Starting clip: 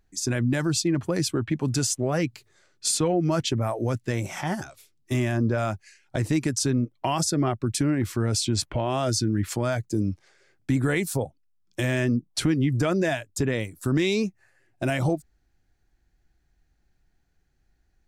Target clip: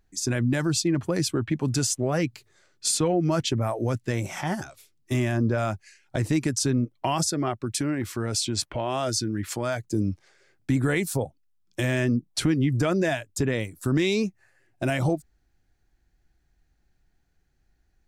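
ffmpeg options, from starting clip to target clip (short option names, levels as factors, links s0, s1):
-filter_complex "[0:a]asettb=1/sr,asplit=3[s0][s1][s2];[s0]atrim=end=7.274[s3];[s1]atrim=start=7.27:end=9.84,asetpts=PTS-STARTPTS,afade=t=in:d=0.004:c=qsin,afade=t=out:st=2.566:d=0.004:c=qsin,lowshelf=f=270:g=-7[s4];[s2]atrim=start=9.836[s5];[s3][s4]acrossfade=d=0.004:c1=hsin:c2=qsin[s6];[s6][s5]acrossfade=d=0.004:c1=qsin:c2=hsin"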